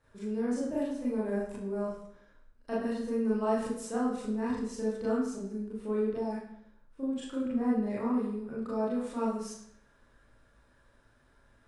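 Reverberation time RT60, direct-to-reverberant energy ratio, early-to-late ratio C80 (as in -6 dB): 0.70 s, -7.5 dB, 5.0 dB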